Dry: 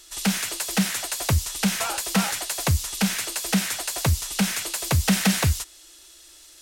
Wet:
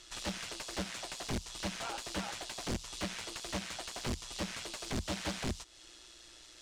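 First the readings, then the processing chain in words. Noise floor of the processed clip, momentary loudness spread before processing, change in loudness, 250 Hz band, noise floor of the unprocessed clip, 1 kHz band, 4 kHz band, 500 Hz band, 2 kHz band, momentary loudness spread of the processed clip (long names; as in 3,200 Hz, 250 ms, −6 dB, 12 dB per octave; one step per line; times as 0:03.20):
−56 dBFS, 5 LU, −15.5 dB, −16.0 dB, −50 dBFS, −12.0 dB, −12.0 dB, −9.0 dB, −14.0 dB, 13 LU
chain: dynamic equaliser 1,800 Hz, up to −5 dB, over −43 dBFS, Q 1.5
downward compressor 2.5 to 1, threshold −34 dBFS, peak gain reduction 12 dB
amplitude modulation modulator 120 Hz, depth 35%
wrap-around overflow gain 28.5 dB
high-frequency loss of the air 90 metres
level +1 dB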